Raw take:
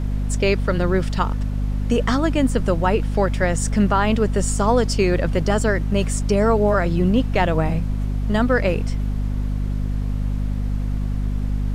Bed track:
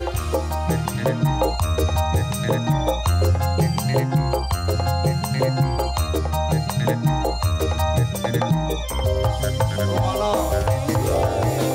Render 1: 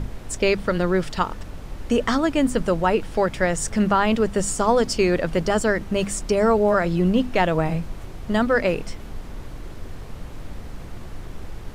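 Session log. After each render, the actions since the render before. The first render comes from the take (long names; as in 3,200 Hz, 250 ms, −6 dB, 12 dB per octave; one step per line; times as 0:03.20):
mains-hum notches 50/100/150/200/250 Hz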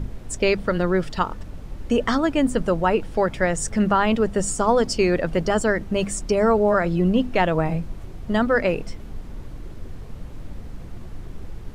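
broadband denoise 6 dB, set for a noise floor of −37 dBFS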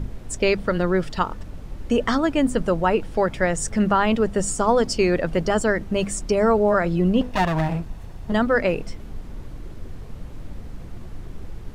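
0:07.21–0:08.32: lower of the sound and its delayed copy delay 1.1 ms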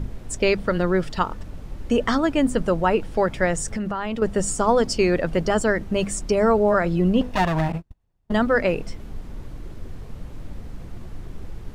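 0:03.60–0:04.22: downward compressor, threshold −23 dBFS
0:07.72–0:08.36: noise gate −25 dBFS, range −35 dB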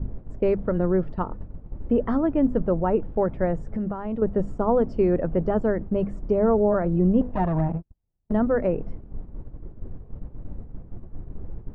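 Bessel low-pass filter 640 Hz, order 2
noise gate −32 dBFS, range −8 dB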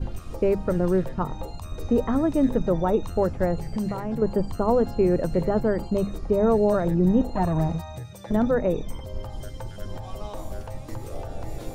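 mix in bed track −17.5 dB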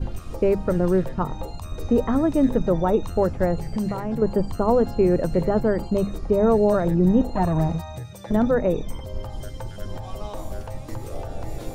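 level +2 dB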